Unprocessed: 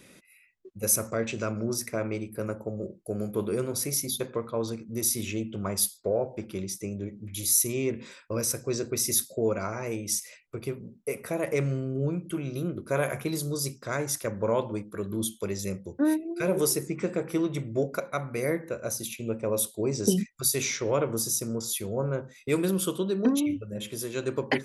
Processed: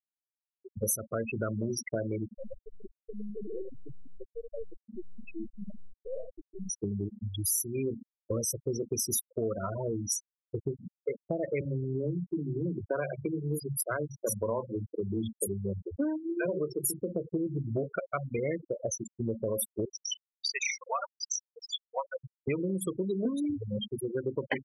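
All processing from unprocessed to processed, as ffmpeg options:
-filter_complex "[0:a]asettb=1/sr,asplit=3[s0][s1][s2];[s0]atrim=end=2.364[s3];[s1]atrim=start=2.36:end=6.7,asetpts=PTS-STARTPTS,afade=t=in:d=0.004:c=qsin,afade=t=out:st=4.336:d=0.004:c=qsin,tiltshelf=f=840:g=-3.5,aeval=exprs='(tanh(79.4*val(0)+0.65)-tanh(0.65))/79.4':c=same,aecho=1:1:73:0.531,atrim=end_sample=191394[s4];[s2]atrim=start=6.696[s5];[s3][s4]acrossfade=d=0.004:c1=hsin:c2=qsin[s6];[s6][s5]acrossfade=d=0.004:c1=qsin:c2=hsin,asettb=1/sr,asplit=3[s7][s8][s9];[s7]atrim=end=11.614[s10];[s8]atrim=start=11.61:end=17.13,asetpts=PTS-STARTPTS,afade=t=in:d=0.004:c=qsin,afade=t=out:st=5.516:d=0.004:c=qsin,highshelf=f=10000:g=5,acrossover=split=180|4900[s11][s12][s13];[s11]adelay=40[s14];[s13]adelay=180[s15];[s14][s12][s15]amix=inputs=3:normalize=0,atrim=end_sample=243432[s16];[s9]atrim=start=17.126[s17];[s10][s16]acrossfade=d=0.004:c1=hsin:c2=qsin[s18];[s18][s17]acrossfade=d=0.004:c1=qsin:c2=hsin,asettb=1/sr,asplit=3[s19][s20][s21];[s19]atrim=end=19.854[s22];[s20]atrim=start=19.85:end=22.24,asetpts=PTS-STARTPTS,afade=t=in:d=0.004:c=qsin,afade=t=out:st=2.386:d=0.004:c=qsin,highpass=f=750:w=0.5412,highpass=f=750:w=1.3066,acrossover=split=6200[s23][s24];[s24]acompressor=threshold=0.00794:ratio=4:attack=1:release=60[s25];[s23][s25]amix=inputs=2:normalize=0,aphaser=in_gain=1:out_gain=1:delay=4.5:decay=0.57:speed=1.4:type=sinusoidal[s26];[s21]atrim=start=22.236[s27];[s22][s26]acrossfade=d=0.004:c1=hsin:c2=qsin[s28];[s28][s27]acrossfade=d=0.004:c1=qsin:c2=hsin,afftfilt=real='re*gte(hypot(re,im),0.0708)':imag='im*gte(hypot(re,im),0.0708)':win_size=1024:overlap=0.75,equalizer=f=340:w=0.5:g=-2.5,acompressor=threshold=0.0158:ratio=5,volume=2.24"

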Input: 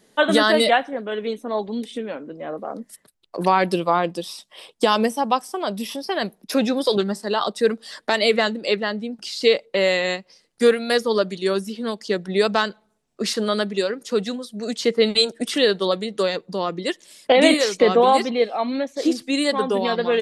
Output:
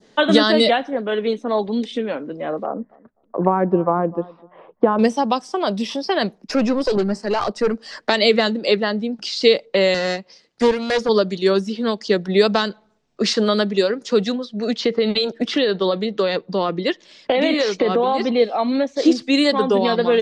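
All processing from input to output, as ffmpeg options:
-filter_complex "[0:a]asettb=1/sr,asplit=3[s0][s1][s2];[s0]atrim=end=2.664[s3];[s1]atrim=start=2.66:end=4.99,asetpts=PTS-STARTPTS,afade=t=in:d=0.004:c=qsin,afade=t=out:st=2.326:d=0.004:c=qsin,lowpass=f=1400:w=0.5412,lowpass=f=1400:w=1.3066,asplit=2[s4][s5];[s5]adelay=251,lowpass=f=930:p=1,volume=0.0708,asplit=2[s6][s7];[s7]adelay=251,lowpass=f=930:p=1,volume=0.21[s8];[s4][s6][s8]amix=inputs=3:normalize=0,atrim=end_sample=102753[s9];[s2]atrim=start=4.986[s10];[s3][s9]acrossfade=d=0.004:c1=hsin:c2=qsin[s11];[s11][s10]acrossfade=d=0.004:c1=qsin:c2=hsin,asettb=1/sr,asplit=3[s12][s13][s14];[s12]atrim=end=6.384[s15];[s13]atrim=start=6.38:end=8.06,asetpts=PTS-STARTPTS,afade=t=in:d=0.004:c=qsin,afade=t=out:st=1.676:d=0.004:c=qsin,aeval=exprs='(tanh(7.94*val(0)+0.3)-tanh(0.3))/7.94':c=same,equalizer=f=3600:t=o:w=0.31:g=-12.5[s16];[s14]atrim=start=8.056[s17];[s15][s16]acrossfade=d=0.004:c1=hsin:c2=qsin[s18];[s18][s17]acrossfade=d=0.004:c1=qsin:c2=hsin,asettb=1/sr,asplit=3[s19][s20][s21];[s19]atrim=end=9.944[s22];[s20]atrim=start=9.94:end=11.09,asetpts=PTS-STARTPTS,afade=t=in:d=0.004:c=qsin,afade=t=out:st=1.146:d=0.004:c=qsin,aeval=exprs='clip(val(0),-1,0.0422)':c=same,highpass=f=83:p=1[s23];[s21]atrim=start=11.086[s24];[s22][s23]acrossfade=d=0.004:c1=hsin:c2=qsin[s25];[s25][s24]acrossfade=d=0.004:c1=qsin:c2=hsin,asettb=1/sr,asplit=3[s26][s27][s28];[s26]atrim=end=14.324[s29];[s27]atrim=start=14.32:end=18.36,asetpts=PTS-STARTPTS,afade=t=in:d=0.004:c=qsin,afade=t=out:st=4.036:d=0.004:c=qsin,acompressor=threshold=0.126:ratio=6:attack=3.2:release=140:knee=1:detection=peak,lowpass=4600[s30];[s28]atrim=start=18.356[s31];[s29][s30]acrossfade=d=0.004:c1=hsin:c2=qsin[s32];[s32][s31]acrossfade=d=0.004:c1=qsin:c2=hsin,acrossover=split=410|3000[s33][s34][s35];[s34]acompressor=threshold=0.0794:ratio=6[s36];[s33][s36][s35]amix=inputs=3:normalize=0,lowpass=f=6200:w=0.5412,lowpass=f=6200:w=1.3066,adynamicequalizer=threshold=0.0112:dfrequency=2400:dqfactor=0.86:tfrequency=2400:tqfactor=0.86:attack=5:release=100:ratio=0.375:range=2:mode=cutabove:tftype=bell,volume=1.88"

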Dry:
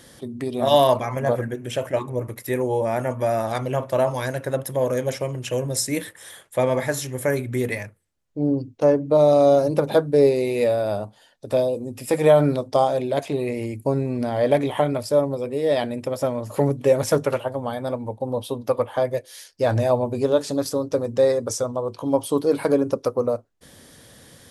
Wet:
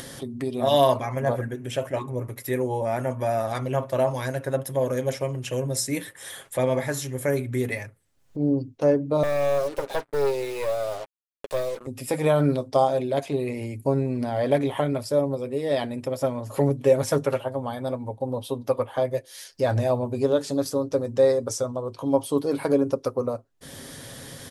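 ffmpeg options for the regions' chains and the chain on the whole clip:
-filter_complex "[0:a]asettb=1/sr,asplit=3[s0][s1][s2];[s0]atrim=end=9.234[s3];[s1]atrim=start=9.23:end=11.87,asetpts=PTS-STARTPTS,afade=t=in:d=0.004:c=qsin,afade=t=out:st=2.636:d=0.004:c=qsin,highpass=f=360:w=0.5412,highpass=f=360:w=1.3066,aeval=exprs='(tanh(7.08*val(0)+0.55)-tanh(0.55))/7.08':c=same,acrusher=bits=5:mix=0:aa=0.5[s4];[s2]atrim=start=11.866[s5];[s3][s4]acrossfade=d=0.004:c1=hsin:c2=qsin[s6];[s6][s5]acrossfade=d=0.004:c1=qsin:c2=hsin,aecho=1:1:7.4:0.39,acompressor=mode=upward:threshold=0.0501:ratio=2.5,volume=0.668"

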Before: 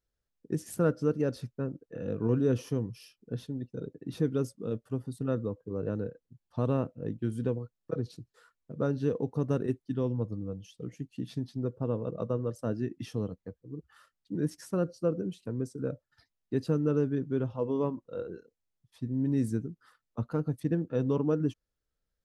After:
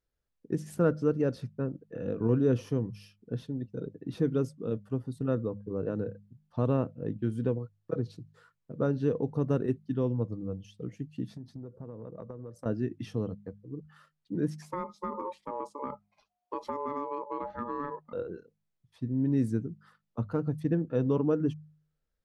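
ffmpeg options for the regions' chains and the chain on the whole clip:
-filter_complex "[0:a]asettb=1/sr,asplit=3[s0][s1][s2];[s0]atrim=end=11.254[s3];[s1]atrim=start=11.25:end=12.66,asetpts=PTS-STARTPTS,afade=t=in:d=0.004:c=qsin,afade=t=out:st=1.406:d=0.004:c=qsin,equalizer=f=2900:w=1.5:g=-10,acompressor=threshold=0.0112:ratio=10:attack=3.2:release=140:knee=1:detection=peak[s4];[s2]atrim=start=12.656[s5];[s3][s4]acrossfade=d=0.004:c1=hsin:c2=qsin[s6];[s6][s5]acrossfade=d=0.004:c1=qsin:c2=hsin,asettb=1/sr,asplit=3[s7][s8][s9];[s7]atrim=end=14.624[s10];[s8]atrim=start=14.62:end=18.13,asetpts=PTS-STARTPTS,afade=t=in:d=0.004:c=qsin,afade=t=out:st=3.506:d=0.004:c=qsin,aeval=exprs='val(0)*sin(2*PI*720*n/s)':c=same,acompressor=threshold=0.0282:ratio=4:attack=3.2:release=140:knee=1:detection=peak[s11];[s9]atrim=start=18.126[s12];[s10][s11]acrossfade=d=0.004:c1=hsin:c2=qsin[s13];[s13][s12]acrossfade=d=0.004:c1=qsin:c2=hsin,aemphasis=mode=reproduction:type=cd,bandreject=f=50.97:t=h:w=4,bandreject=f=101.94:t=h:w=4,bandreject=f=152.91:t=h:w=4,bandreject=f=203.88:t=h:w=4,volume=1.12"

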